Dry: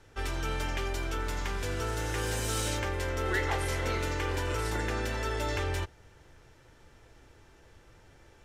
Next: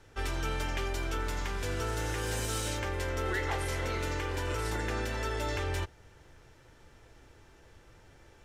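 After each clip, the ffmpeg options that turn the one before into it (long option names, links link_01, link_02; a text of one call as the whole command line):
ffmpeg -i in.wav -af "alimiter=limit=-22.5dB:level=0:latency=1:release=315" out.wav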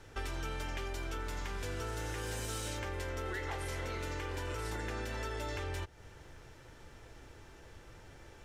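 ffmpeg -i in.wav -af "acompressor=threshold=-40dB:ratio=4,volume=3dB" out.wav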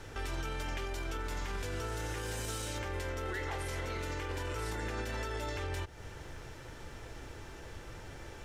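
ffmpeg -i in.wav -af "alimiter=level_in=12dB:limit=-24dB:level=0:latency=1:release=64,volume=-12dB,volume=7dB" out.wav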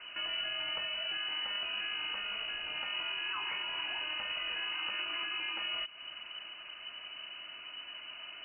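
ffmpeg -i in.wav -af "lowpass=frequency=2600:width_type=q:width=0.5098,lowpass=frequency=2600:width_type=q:width=0.6013,lowpass=frequency=2600:width_type=q:width=0.9,lowpass=frequency=2600:width_type=q:width=2.563,afreqshift=-3000" out.wav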